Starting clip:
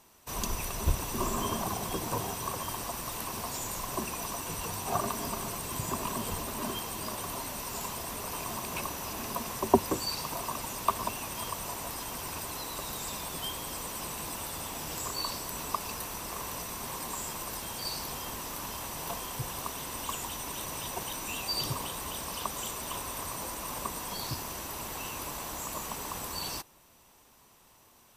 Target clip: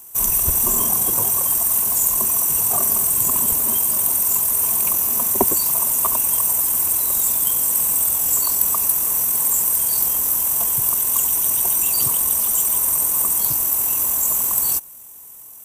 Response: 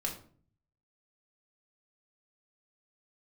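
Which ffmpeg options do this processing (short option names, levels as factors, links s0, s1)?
-af "atempo=1.8,aexciter=amount=8.8:drive=6.2:freq=6800,acontrast=29,volume=0.891"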